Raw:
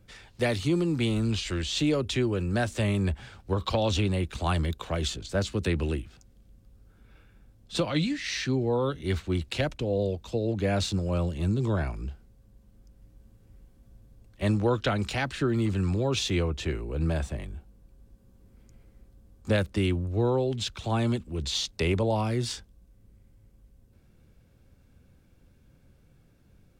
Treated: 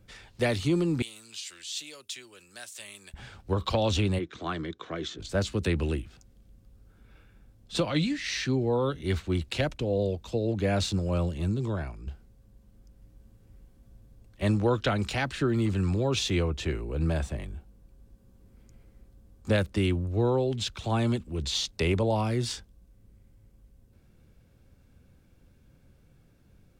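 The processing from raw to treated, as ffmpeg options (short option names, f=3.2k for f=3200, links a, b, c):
-filter_complex "[0:a]asettb=1/sr,asplit=3[a][b][c];[a]atrim=end=1.024[d];[b]atrim=start=1.02:end=3.14,asetpts=PTS-STARTPTS,afade=t=in:d=0.004:c=qsin,afade=t=out:st=2.116:d=0.004:c=qsin,aderivative[e];[c]atrim=start=3.136[f];[d][e]acrossfade=d=0.004:c1=hsin:c2=qsin[g];[g][f]acrossfade=d=0.004:c1=qsin:c2=hsin,asplit=3[h][i][j];[h]afade=t=out:st=4.18:d=0.02[k];[i]highpass=210,equalizer=f=220:t=q:w=4:g=-5,equalizer=f=320:t=q:w=4:g=4,equalizer=f=570:t=q:w=4:g=-7,equalizer=f=860:t=q:w=4:g=-10,equalizer=f=2.7k:t=q:w=4:g=-10,equalizer=f=4.6k:t=q:w=4:g=-10,lowpass=f=5.4k:w=0.5412,lowpass=f=5.4k:w=1.3066,afade=t=in:st=4.18:d=0.02,afade=t=out:st=5.18:d=0.02[l];[j]afade=t=in:st=5.18:d=0.02[m];[k][l][m]amix=inputs=3:normalize=0,asplit=2[n][o];[n]atrim=end=12.07,asetpts=PTS-STARTPTS,afade=t=out:st=11.23:d=0.84:silence=0.375837[p];[o]atrim=start=12.07,asetpts=PTS-STARTPTS,afade=t=in:d=0.004:c=hsin:silence=0.375837[q];[p][q]concat=n=2:v=0:a=1"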